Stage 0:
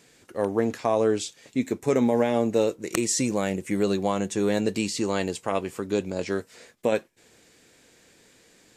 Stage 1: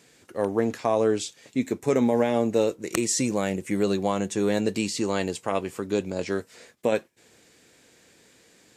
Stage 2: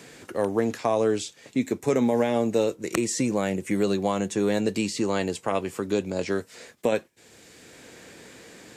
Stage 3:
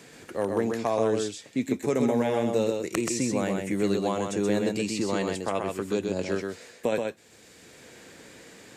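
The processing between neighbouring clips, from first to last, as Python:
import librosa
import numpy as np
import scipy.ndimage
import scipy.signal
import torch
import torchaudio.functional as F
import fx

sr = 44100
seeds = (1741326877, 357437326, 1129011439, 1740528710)

y1 = scipy.signal.sosfilt(scipy.signal.butter(2, 51.0, 'highpass', fs=sr, output='sos'), x)
y2 = fx.band_squash(y1, sr, depth_pct=40)
y3 = y2 + 10.0 ** (-4.0 / 20.0) * np.pad(y2, (int(128 * sr / 1000.0), 0))[:len(y2)]
y3 = y3 * 10.0 ** (-3.0 / 20.0)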